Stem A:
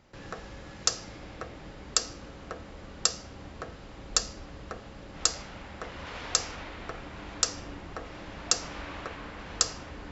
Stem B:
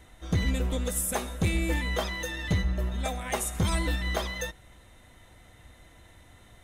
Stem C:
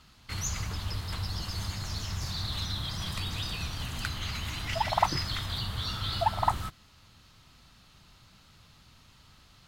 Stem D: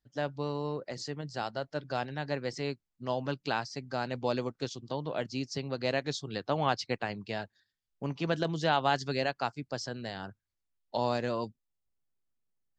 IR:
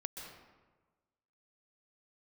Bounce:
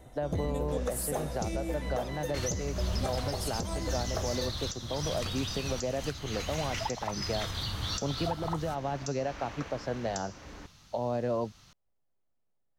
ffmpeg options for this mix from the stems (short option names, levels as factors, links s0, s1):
-filter_complex "[0:a]adelay=550,volume=0.631[s0];[1:a]equalizer=f=1600:w=0.34:g=-8.5,asoftclip=type=tanh:threshold=0.0891,volume=0.891[s1];[2:a]adelay=2050,volume=0.891[s2];[3:a]bass=f=250:g=6,treble=f=4000:g=-6,acrossover=split=300[s3][s4];[s4]acompressor=threshold=0.0178:ratio=6[s5];[s3][s5]amix=inputs=2:normalize=0,volume=0.794[s6];[s1][s6]amix=inputs=2:normalize=0,equalizer=f=620:t=o:w=1.6:g=13,alimiter=limit=0.0794:level=0:latency=1:release=196,volume=1[s7];[s0][s2]amix=inputs=2:normalize=0,equalizer=f=6000:t=o:w=0.31:g=9.5,alimiter=limit=0.0841:level=0:latency=1:release=337,volume=1[s8];[s7][s8]amix=inputs=2:normalize=0,alimiter=limit=0.0891:level=0:latency=1:release=480"